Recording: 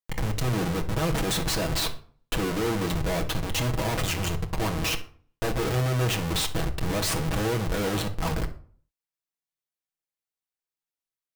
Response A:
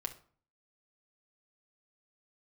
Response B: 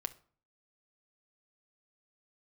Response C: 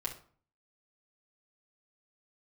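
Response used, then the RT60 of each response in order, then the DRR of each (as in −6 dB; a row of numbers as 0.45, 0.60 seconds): A; 0.45, 0.45, 0.45 seconds; 2.5, 8.5, −3.5 decibels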